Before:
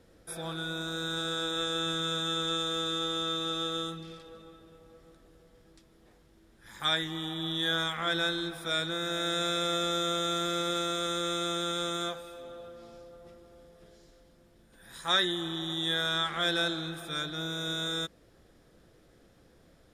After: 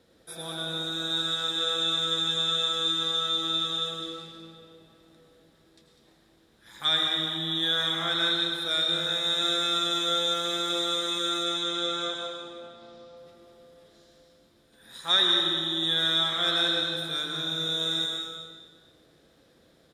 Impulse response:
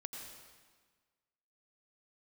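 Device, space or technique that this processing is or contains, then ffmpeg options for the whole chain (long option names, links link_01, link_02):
PA in a hall: -filter_complex "[0:a]asettb=1/sr,asplit=3[link_01][link_02][link_03];[link_01]atrim=end=11.434[link_04];[link_02]atrim=start=11.43:end=13.17,asetpts=PTS-STARTPTS,afade=type=in:duration=0.004:curve=qsin,afade=type=out:start_time=1.736:duration=0.004:curve=qsin,lowpass=6200[link_05];[link_03]atrim=start=13.166[link_06];[link_04][link_05]acrossfade=duration=0.004:curve1=hsin:curve2=qsin[link_07];[link_07][link_06]acrossfade=duration=0.004:curve1=qsin:curve2=hsin,highpass=frequency=140:poles=1,equalizer=frequency=3800:width_type=o:width=0.39:gain=8,aecho=1:1:200:0.355[link_08];[1:a]atrim=start_sample=2205[link_09];[link_08][link_09]afir=irnorm=-1:irlink=0,volume=3dB"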